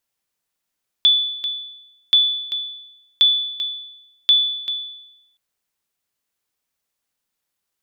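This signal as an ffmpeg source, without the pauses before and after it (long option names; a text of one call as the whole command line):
ffmpeg -f lavfi -i "aevalsrc='0.422*(sin(2*PI*3470*mod(t,1.08))*exp(-6.91*mod(t,1.08)/0.91)+0.299*sin(2*PI*3470*max(mod(t,1.08)-0.39,0))*exp(-6.91*max(mod(t,1.08)-0.39,0)/0.91))':duration=4.32:sample_rate=44100" out.wav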